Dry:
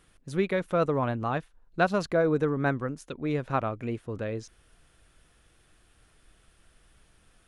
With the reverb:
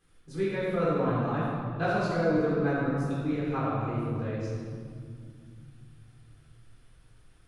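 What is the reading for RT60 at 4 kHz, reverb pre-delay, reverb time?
1.5 s, 3 ms, 2.1 s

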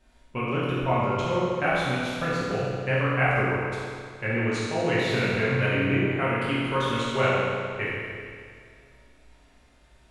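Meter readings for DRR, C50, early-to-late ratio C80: −9.0 dB, −3.0 dB, −1.0 dB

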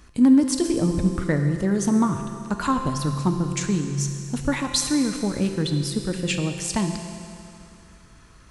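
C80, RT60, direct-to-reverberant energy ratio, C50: 7.0 dB, 2.6 s, 5.0 dB, 6.0 dB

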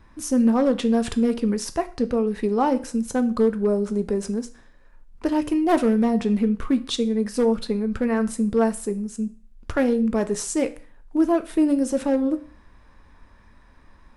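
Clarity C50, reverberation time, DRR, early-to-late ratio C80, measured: 16.5 dB, 0.40 s, 9.5 dB, 21.0 dB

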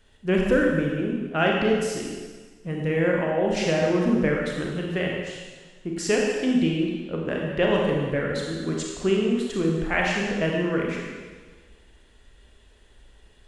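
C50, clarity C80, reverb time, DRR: 0.5 dB, 2.0 dB, 1.5 s, −1.5 dB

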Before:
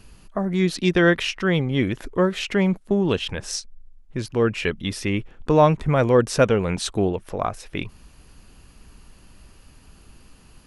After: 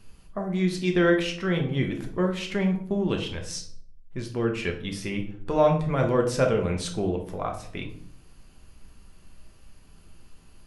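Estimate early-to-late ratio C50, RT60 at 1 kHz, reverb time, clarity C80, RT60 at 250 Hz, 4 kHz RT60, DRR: 8.5 dB, 0.50 s, 0.60 s, 13.5 dB, 0.80 s, 0.40 s, 2.0 dB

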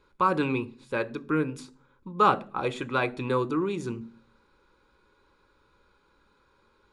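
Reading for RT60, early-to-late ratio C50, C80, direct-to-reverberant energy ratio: 0.45 s, 21.5 dB, 25.5 dB, 10.5 dB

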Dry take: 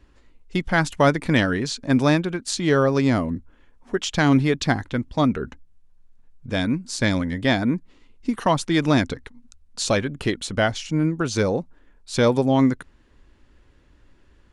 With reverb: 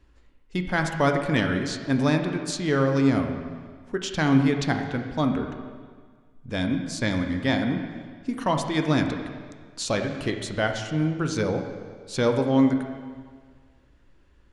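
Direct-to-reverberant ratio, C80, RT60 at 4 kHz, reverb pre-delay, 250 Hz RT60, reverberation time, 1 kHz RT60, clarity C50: 4.5 dB, 7.5 dB, 1.6 s, 7 ms, 1.7 s, 1.7 s, 1.7 s, 6.0 dB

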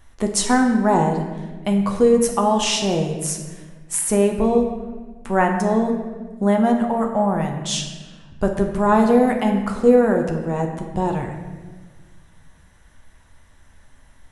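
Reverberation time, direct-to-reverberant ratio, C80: 1.4 s, 2.0 dB, 7.5 dB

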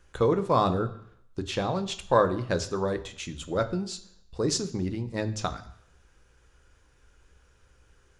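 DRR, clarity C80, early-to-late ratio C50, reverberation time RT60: 9.0 dB, 17.0 dB, 14.5 dB, 0.65 s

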